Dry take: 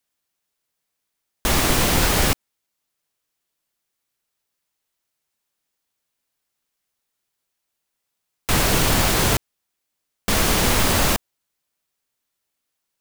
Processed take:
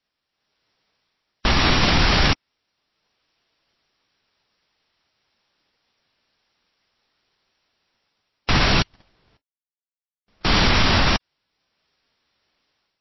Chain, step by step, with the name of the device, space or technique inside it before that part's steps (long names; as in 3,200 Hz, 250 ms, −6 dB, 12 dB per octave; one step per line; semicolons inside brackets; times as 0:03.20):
0:08.82–0:10.45: noise gate −11 dBFS, range −52 dB
dynamic equaliser 480 Hz, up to −6 dB, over −38 dBFS, Q 1.4
low-bitrate web radio (automatic gain control gain up to 10 dB; brickwall limiter −9 dBFS, peak gain reduction 7.5 dB; level +3 dB; MP3 24 kbit/s 16,000 Hz)